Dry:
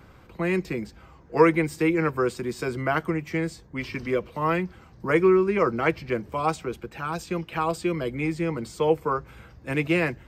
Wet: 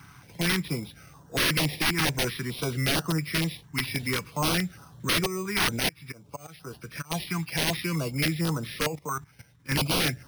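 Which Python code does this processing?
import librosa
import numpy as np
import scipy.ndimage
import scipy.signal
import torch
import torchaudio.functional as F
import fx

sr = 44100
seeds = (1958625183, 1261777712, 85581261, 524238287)

y = fx.freq_compress(x, sr, knee_hz=2200.0, ratio=1.5)
y = fx.auto_swell(y, sr, attack_ms=477.0, at=(5.25, 7.1), fade=0.02)
y = y + 0.4 * np.pad(y, (int(7.0 * sr / 1000.0), 0))[:len(y)]
y = fx.level_steps(y, sr, step_db=15, at=(8.86, 9.7), fade=0.02)
y = scipy.signal.sosfilt(scipy.signal.butter(2, 110.0, 'highpass', fs=sr, output='sos'), y)
y = fx.peak_eq(y, sr, hz=370.0, db=-11.5, octaves=1.7)
y = np.repeat(y[::6], 6)[:len(y)]
y = (np.mod(10.0 ** (23.5 / 20.0) * y + 1.0, 2.0) - 1.0) / 10.0 ** (23.5 / 20.0)
y = fx.filter_held_notch(y, sr, hz=4.4, low_hz=540.0, high_hz=2200.0)
y = y * 10.0 ** (6.5 / 20.0)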